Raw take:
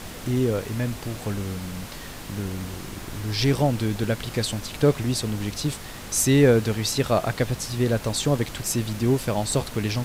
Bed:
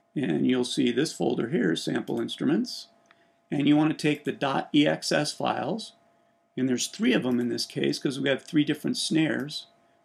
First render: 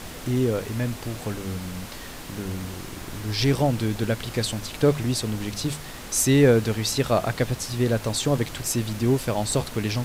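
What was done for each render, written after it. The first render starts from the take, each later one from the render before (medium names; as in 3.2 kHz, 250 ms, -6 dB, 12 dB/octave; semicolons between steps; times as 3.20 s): de-hum 50 Hz, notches 4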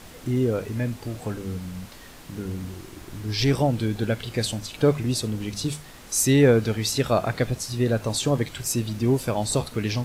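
noise print and reduce 7 dB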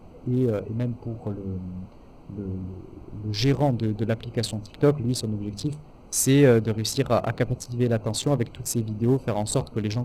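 local Wiener filter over 25 samples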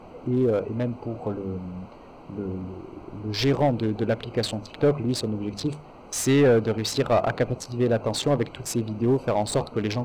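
saturation -10 dBFS, distortion -23 dB; overdrive pedal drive 16 dB, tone 2.2 kHz, clips at -11 dBFS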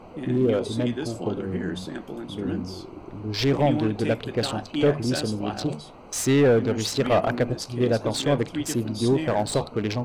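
add bed -6.5 dB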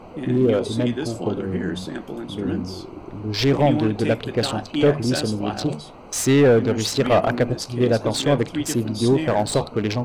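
trim +3.5 dB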